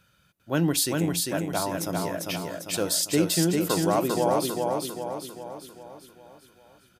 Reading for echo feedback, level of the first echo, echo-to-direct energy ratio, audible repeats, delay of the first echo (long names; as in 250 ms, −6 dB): 51%, −3.0 dB, −1.5 dB, 6, 398 ms